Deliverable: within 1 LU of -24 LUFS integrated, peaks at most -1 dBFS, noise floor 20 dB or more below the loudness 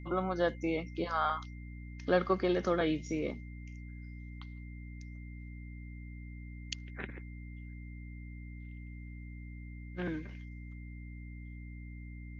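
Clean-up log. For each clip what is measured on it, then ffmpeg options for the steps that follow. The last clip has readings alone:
hum 60 Hz; harmonics up to 300 Hz; hum level -43 dBFS; steady tone 2100 Hz; tone level -57 dBFS; loudness -38.5 LUFS; peak -15.5 dBFS; loudness target -24.0 LUFS
-> -af "bandreject=f=60:t=h:w=6,bandreject=f=120:t=h:w=6,bandreject=f=180:t=h:w=6,bandreject=f=240:t=h:w=6,bandreject=f=300:t=h:w=6"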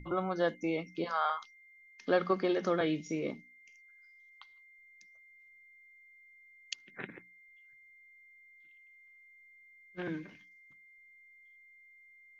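hum none; steady tone 2100 Hz; tone level -57 dBFS
-> -af "bandreject=f=2.1k:w=30"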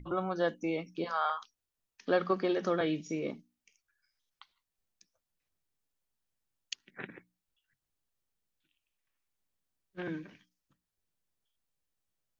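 steady tone none; loudness -34.0 LUFS; peak -15.5 dBFS; loudness target -24.0 LUFS
-> -af "volume=10dB"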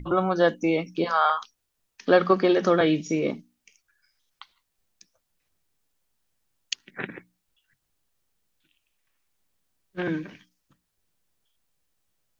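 loudness -24.0 LUFS; peak -5.5 dBFS; noise floor -78 dBFS

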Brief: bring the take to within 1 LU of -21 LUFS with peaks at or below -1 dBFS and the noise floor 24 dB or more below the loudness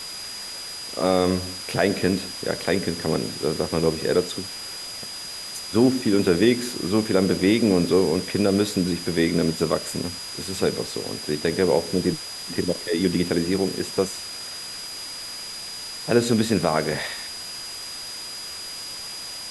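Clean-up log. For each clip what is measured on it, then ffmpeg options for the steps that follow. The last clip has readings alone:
steady tone 4900 Hz; tone level -34 dBFS; noise floor -35 dBFS; noise floor target -48 dBFS; loudness -24.0 LUFS; peak -4.5 dBFS; loudness target -21.0 LUFS
-> -af "bandreject=f=4.9k:w=30"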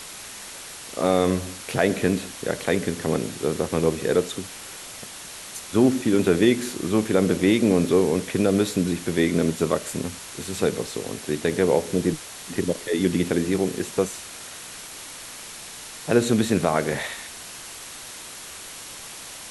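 steady tone none; noise floor -39 dBFS; noise floor target -48 dBFS
-> -af "afftdn=nr=9:nf=-39"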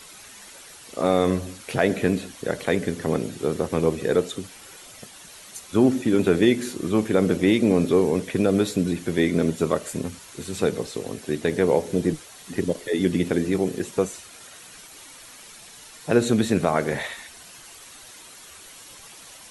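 noise floor -45 dBFS; noise floor target -48 dBFS
-> -af "afftdn=nr=6:nf=-45"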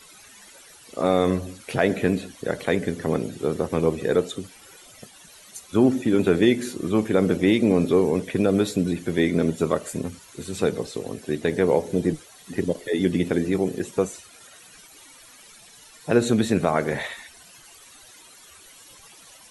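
noise floor -49 dBFS; loudness -23.5 LUFS; peak -5.0 dBFS; loudness target -21.0 LUFS
-> -af "volume=2.5dB"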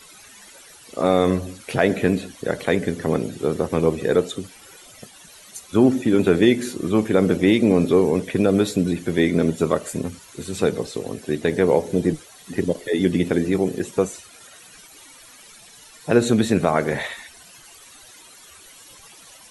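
loudness -21.0 LUFS; peak -2.5 dBFS; noise floor -47 dBFS

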